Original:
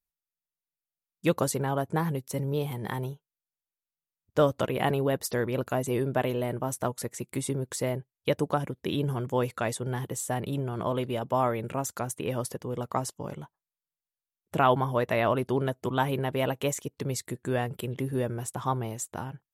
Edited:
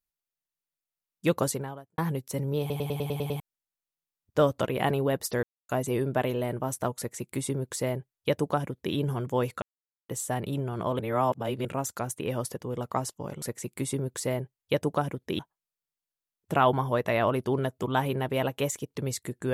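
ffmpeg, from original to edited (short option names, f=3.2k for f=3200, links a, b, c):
-filter_complex "[0:a]asplit=18[a][b][c][d][e][f][g][h][i][j][k][l][m][n][o][p][q][r];[a]atrim=end=1.98,asetpts=PTS-STARTPTS,afade=t=out:st=1.5:d=0.48:c=qua[s];[b]atrim=start=1.98:end=2.702,asetpts=PTS-STARTPTS,afade=t=in:d=0.004:c=hsin[t];[c]atrim=start=2.598:end=2.702[u];[d]atrim=start=2.598:end=2.702[v];[e]atrim=start=2.598:end=2.702[w];[f]atrim=start=2.598:end=2.702[x];[g]atrim=start=2.598:end=2.702[y];[h]atrim=start=2.598:end=2.702[z];[i]atrim=start=2.598:end=2.702[aa];[j]atrim=start=3.398:end=5.43,asetpts=PTS-STARTPTS,afade=t=out:st=2.028:d=0.004:c=hsin[ab];[k]atrim=start=5.43:end=5.69,asetpts=PTS-STARTPTS,volume=0[ac];[l]atrim=start=5.69:end=9.62,asetpts=PTS-STARTPTS,afade=t=in:d=0.004:c=hsin,afade=t=out:st=3.926:d=0.004:c=hsin[ad];[m]atrim=start=9.62:end=10.09,asetpts=PTS-STARTPTS,volume=0[ae];[n]atrim=start=10.09:end=10.992,asetpts=PTS-STARTPTS,afade=t=in:d=0.004:c=hsin[af];[o]atrim=start=10.988:end=11.652,asetpts=PTS-STARTPTS,areverse[ag];[p]atrim=start=11.648:end=13.422[ah];[q]atrim=start=6.978:end=8.952[ai];[r]atrim=start=13.418[aj];[s][t]concat=n=2:v=0:a=1[ak];[ak][u]acrossfade=d=0.004:c1=hsin:c2=hsin[al];[al][v]acrossfade=d=0.004:c1=hsin:c2=hsin[am];[am][w]acrossfade=d=0.004:c1=hsin:c2=hsin[an];[an][x]acrossfade=d=0.004:c1=hsin:c2=hsin[ao];[ao][y]acrossfade=d=0.004:c1=hsin:c2=hsin[ap];[ap][z]acrossfade=d=0.004:c1=hsin:c2=hsin[aq];[aq][aa]acrossfade=d=0.004:c1=hsin:c2=hsin[ar];[ab][ac][ad][ae][af]concat=n=5:v=0:a=1[as];[ar][as]acrossfade=d=0.004:c1=hsin:c2=hsin[at];[at][ag]acrossfade=d=0.004:c1=hsin:c2=hsin[au];[au][ah]acrossfade=d=0.004:c1=hsin:c2=hsin[av];[av][ai]acrossfade=d=0.004:c1=hsin:c2=hsin[aw];[aw][aj]acrossfade=d=0.004:c1=hsin:c2=hsin"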